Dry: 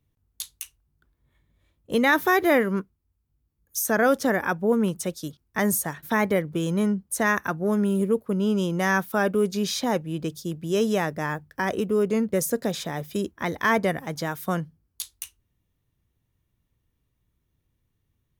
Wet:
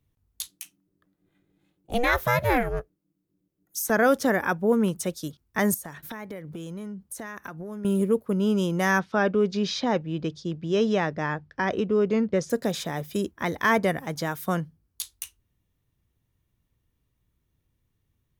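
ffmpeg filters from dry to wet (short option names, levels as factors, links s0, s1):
-filter_complex "[0:a]asettb=1/sr,asplit=3[s0][s1][s2];[s0]atrim=end=0.474[s3];[s1]atrim=start=0.47:end=3.9,asetpts=PTS-STARTPTS,afade=t=in:d=0.004:c=qsin,afade=t=out:st=3.426:d=0.004:c=qsin,aeval=exprs='val(0)*sin(2*PI*240*n/s)':c=same[s4];[s2]atrim=start=3.896[s5];[s3][s4]acrossfade=d=0.004:c1=hsin:c2=qsin[s6];[s6][s5]acrossfade=d=0.004:c1=qsin:c2=hsin,asettb=1/sr,asplit=3[s7][s8][s9];[s7]atrim=end=5.744[s10];[s8]atrim=start=5.74:end=7.85,asetpts=PTS-STARTPTS,afade=t=in:d=0.004:c=qsin,afade=t=out:st=2.106:d=0.004:c=qsin,acompressor=threshold=0.0224:ratio=12:attack=3.2:release=140:knee=1:detection=peak[s11];[s9]atrim=start=7.846[s12];[s10][s11]acrossfade=d=0.004:c1=hsin:c2=qsin[s13];[s13][s12]acrossfade=d=0.004:c1=qsin:c2=hsin,asettb=1/sr,asplit=3[s14][s15][s16];[s14]atrim=end=8.994[s17];[s15]atrim=start=8.99:end=12.5,asetpts=PTS-STARTPTS,afade=t=in:d=0.004:c=qsin,afade=t=out:st=3.506:d=0.004:c=qsin,lowpass=f=5300:w=0.5412,lowpass=f=5300:w=1.3066[s18];[s16]atrim=start=12.496[s19];[s17][s18]acrossfade=d=0.004:c1=hsin:c2=qsin[s20];[s20][s19]acrossfade=d=0.004:c1=qsin:c2=hsin"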